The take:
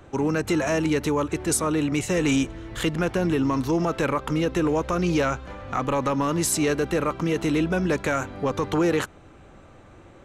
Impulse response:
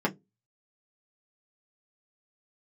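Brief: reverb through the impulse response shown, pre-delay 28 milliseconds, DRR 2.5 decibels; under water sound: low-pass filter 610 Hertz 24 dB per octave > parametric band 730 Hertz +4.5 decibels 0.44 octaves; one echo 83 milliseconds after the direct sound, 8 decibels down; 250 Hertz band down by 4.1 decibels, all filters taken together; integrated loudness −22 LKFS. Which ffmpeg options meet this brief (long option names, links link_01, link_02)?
-filter_complex "[0:a]equalizer=frequency=250:width_type=o:gain=-6,aecho=1:1:83:0.398,asplit=2[link_01][link_02];[1:a]atrim=start_sample=2205,adelay=28[link_03];[link_02][link_03]afir=irnorm=-1:irlink=0,volume=-13dB[link_04];[link_01][link_04]amix=inputs=2:normalize=0,lowpass=frequency=610:width=0.5412,lowpass=frequency=610:width=1.3066,equalizer=frequency=730:width_type=o:width=0.44:gain=4.5,volume=2dB"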